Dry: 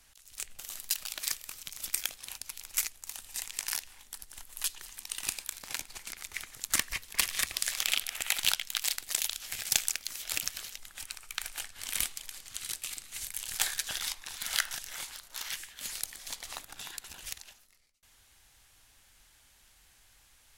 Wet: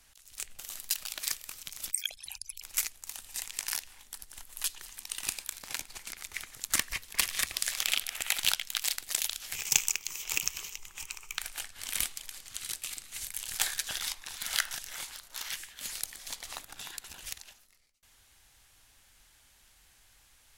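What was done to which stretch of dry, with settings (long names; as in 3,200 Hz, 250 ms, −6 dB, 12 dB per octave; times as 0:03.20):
0:01.91–0:02.62: spectral envelope exaggerated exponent 3
0:09.55–0:11.38: EQ curve with evenly spaced ripples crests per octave 0.74, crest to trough 10 dB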